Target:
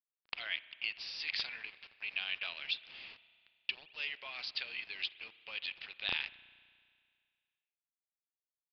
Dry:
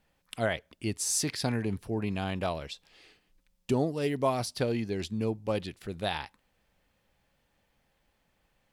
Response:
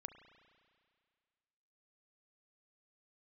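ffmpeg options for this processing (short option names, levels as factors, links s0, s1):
-filter_complex "[0:a]acompressor=threshold=0.0282:ratio=16,highpass=f=2600:t=q:w=2.7,aeval=exprs='(mod(11.2*val(0)+1,2)-1)/11.2':c=same,acrusher=bits=8:mix=0:aa=0.000001,asplit=2[s0][s1];[1:a]atrim=start_sample=2205,lowpass=3900[s2];[s1][s2]afir=irnorm=-1:irlink=0,volume=1.26[s3];[s0][s3]amix=inputs=2:normalize=0,aresample=11025,aresample=44100"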